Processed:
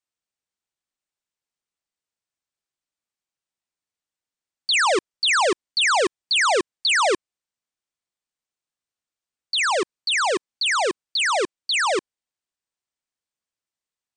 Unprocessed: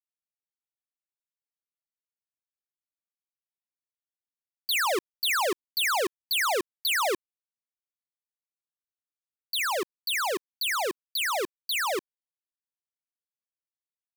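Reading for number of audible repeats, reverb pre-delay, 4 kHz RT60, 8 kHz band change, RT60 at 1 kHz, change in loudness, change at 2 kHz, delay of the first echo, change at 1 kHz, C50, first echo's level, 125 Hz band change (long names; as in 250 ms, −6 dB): no echo audible, no reverb audible, no reverb audible, +5.5 dB, no reverb audible, +6.5 dB, +7.0 dB, no echo audible, +7.0 dB, no reverb audible, no echo audible, can't be measured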